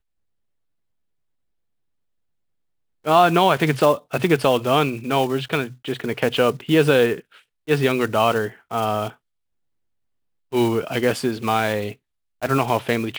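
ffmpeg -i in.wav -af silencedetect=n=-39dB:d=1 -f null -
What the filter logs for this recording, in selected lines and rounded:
silence_start: 0.00
silence_end: 3.05 | silence_duration: 3.05
silence_start: 9.13
silence_end: 10.52 | silence_duration: 1.39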